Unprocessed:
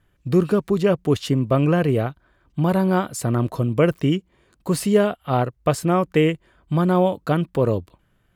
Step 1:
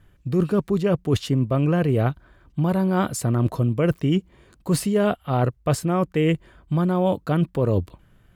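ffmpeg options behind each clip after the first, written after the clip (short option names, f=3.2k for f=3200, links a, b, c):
-af "lowshelf=f=220:g=5.5,areverse,acompressor=threshold=-22dB:ratio=6,areverse,volume=4.5dB"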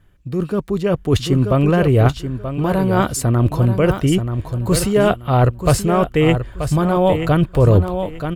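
-af "aecho=1:1:932|1864|2796:0.355|0.0745|0.0156,dynaudnorm=f=390:g=5:m=11.5dB,asubboost=boost=11:cutoff=63"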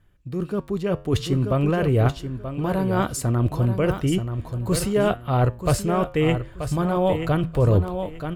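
-af "flanger=delay=8.5:depth=2.4:regen=-84:speed=0.55:shape=triangular,volume=-1.5dB"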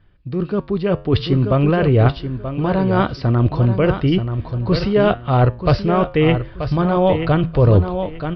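-af "aresample=11025,aresample=44100,volume=5.5dB"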